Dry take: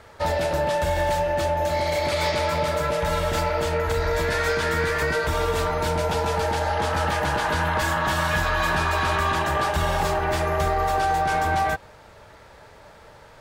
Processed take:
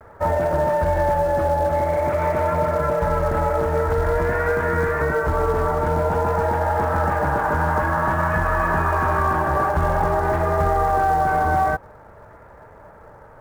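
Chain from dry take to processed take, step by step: LPF 1600 Hz 24 dB/oct; in parallel at -5.5 dB: short-mantissa float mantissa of 2-bit; on the sum: vibrato 0.5 Hz 37 cents

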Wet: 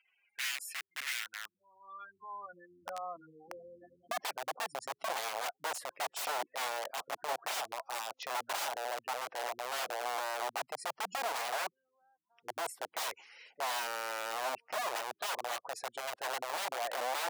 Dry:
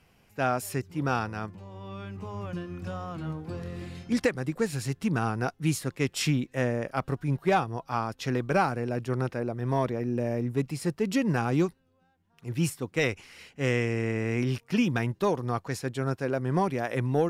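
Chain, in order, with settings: spectral gate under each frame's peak -15 dB strong; wrapped overs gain 26.5 dB; high-pass sweep 2000 Hz -> 710 Hz, 1.2–2.93; gain -6 dB

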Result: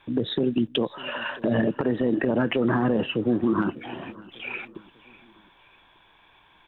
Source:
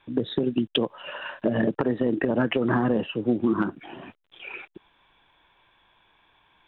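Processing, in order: limiter -18.5 dBFS, peak gain reduction 9 dB; feedback echo 0.597 s, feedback 46%, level -21 dB; gain +4.5 dB

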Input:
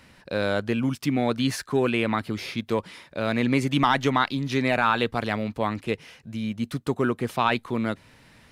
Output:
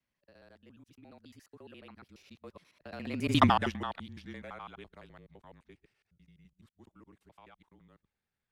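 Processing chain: local time reversal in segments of 77 ms; Doppler pass-by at 3.43, 33 m/s, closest 2.1 m; frequency shift -30 Hz; gain +1 dB

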